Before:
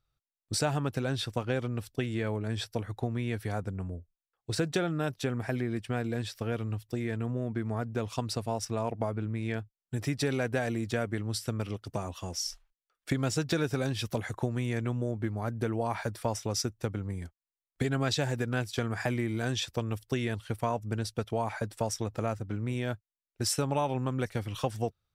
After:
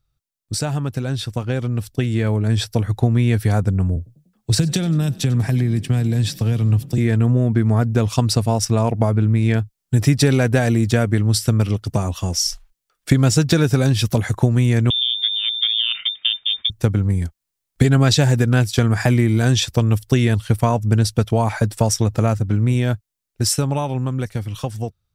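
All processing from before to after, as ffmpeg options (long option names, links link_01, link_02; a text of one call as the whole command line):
ffmpeg -i in.wav -filter_complex "[0:a]asettb=1/sr,asplit=3[link_01][link_02][link_03];[link_01]atrim=end=3.964[link_04];[link_02]atrim=start=3.96:end=6.98,asetpts=PTS-STARTPTS,afade=type=in:duration=0.004:curve=qsin,afade=type=out:start_time=3.016:duration=0.004:curve=qsin,equalizer=frequency=1400:width=7.2:gain=-4.5,acrossover=split=200|3000[link_05][link_06][link_07];[link_06]acompressor=threshold=-39dB:ratio=6:attack=3.2:release=140:knee=2.83:detection=peak[link_08];[link_05][link_08][link_07]amix=inputs=3:normalize=0,asplit=5[link_09][link_10][link_11][link_12][link_13];[link_10]adelay=96,afreqshift=32,volume=-21dB[link_14];[link_11]adelay=192,afreqshift=64,volume=-26.4dB[link_15];[link_12]adelay=288,afreqshift=96,volume=-31.7dB[link_16];[link_13]adelay=384,afreqshift=128,volume=-37.1dB[link_17];[link_09][link_14][link_15][link_16][link_17]amix=inputs=5:normalize=0,atrim=end_sample=133182[link_18];[link_03]atrim=start=6.976[link_19];[link_04][link_18]acrossfade=duration=0.004:curve1=hsin:curve2=qsin[link_20];[link_20][link_19]acrossfade=duration=0.004:curve1=qsin:curve2=hsin,asettb=1/sr,asplit=3[link_21][link_22][link_23];[link_21]atrim=end=14.904[link_24];[link_22]atrim=start=14.9:end=16.7,asetpts=PTS-STARTPTS,afade=type=in:duration=0.004:curve=qsin,afade=type=out:start_time=1.796:duration=0.004:curve=qsin,equalizer=frequency=1300:width=0.78:gain=-3,adynamicsmooth=sensitivity=1.5:basefreq=960,lowpass=frequency=3100:width_type=q:width=0.5098,lowpass=frequency=3100:width_type=q:width=0.6013,lowpass=frequency=3100:width_type=q:width=0.9,lowpass=frequency=3100:width_type=q:width=2.563,afreqshift=-3700[link_25];[link_23]atrim=start=16.696[link_26];[link_24][link_25]acrossfade=duration=0.004:curve1=hsin:curve2=qsin[link_27];[link_27][link_26]acrossfade=duration=0.004:curve1=qsin:curve2=hsin,bass=frequency=250:gain=8,treble=frequency=4000:gain=5,dynaudnorm=framelen=200:gausssize=21:maxgain=9dB,volume=2dB" out.wav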